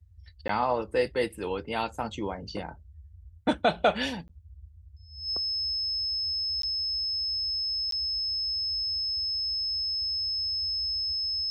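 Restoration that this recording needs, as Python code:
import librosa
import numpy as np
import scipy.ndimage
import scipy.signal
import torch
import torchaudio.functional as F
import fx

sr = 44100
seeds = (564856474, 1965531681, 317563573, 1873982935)

y = fx.notch(x, sr, hz=5200.0, q=30.0)
y = fx.fix_interpolate(y, sr, at_s=(0.48, 4.28, 6.62, 7.91), length_ms=13.0)
y = fx.noise_reduce(y, sr, print_start_s=2.97, print_end_s=3.47, reduce_db=27.0)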